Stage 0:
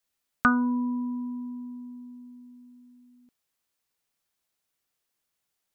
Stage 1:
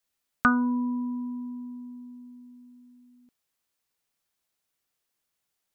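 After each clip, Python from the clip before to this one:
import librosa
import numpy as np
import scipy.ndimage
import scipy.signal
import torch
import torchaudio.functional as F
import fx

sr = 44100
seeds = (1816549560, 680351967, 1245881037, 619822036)

y = x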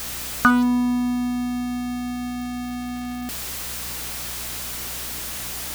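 y = x + 0.5 * 10.0 ** (-29.0 / 20.0) * np.sign(x)
y = fx.add_hum(y, sr, base_hz=60, snr_db=17)
y = F.gain(torch.from_numpy(y), 4.5).numpy()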